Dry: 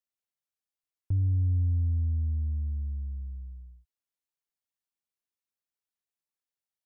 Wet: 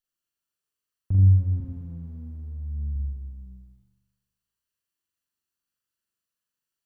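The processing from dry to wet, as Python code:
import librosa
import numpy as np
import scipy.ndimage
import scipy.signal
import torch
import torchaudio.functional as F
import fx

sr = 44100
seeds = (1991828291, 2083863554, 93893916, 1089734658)

y = fx.lower_of_two(x, sr, delay_ms=0.67)
y = fx.low_shelf(y, sr, hz=190.0, db=-11.5, at=(1.6, 2.96))
y = fx.room_flutter(y, sr, wall_m=7.1, rt60_s=1.1)
y = F.gain(torch.from_numpy(y), 2.5).numpy()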